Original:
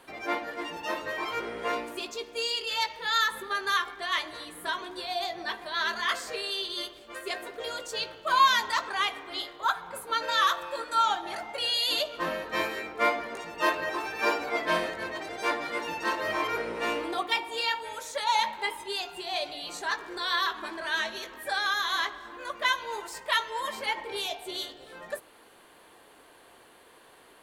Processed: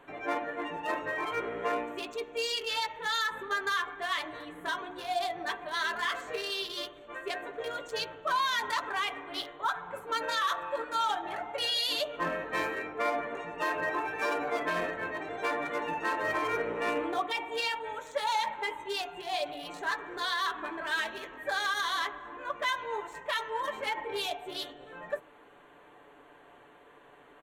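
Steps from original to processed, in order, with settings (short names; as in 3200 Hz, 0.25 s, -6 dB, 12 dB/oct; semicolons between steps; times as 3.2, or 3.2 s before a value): Wiener smoothing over 9 samples; comb 6.9 ms, depth 44%; limiter -21 dBFS, peak gain reduction 9.5 dB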